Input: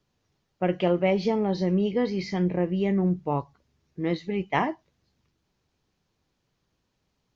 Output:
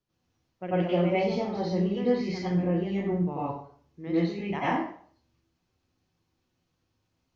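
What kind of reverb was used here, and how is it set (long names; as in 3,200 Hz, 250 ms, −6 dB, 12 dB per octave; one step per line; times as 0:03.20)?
dense smooth reverb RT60 0.52 s, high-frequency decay 0.85×, pre-delay 80 ms, DRR −9.5 dB
level −12 dB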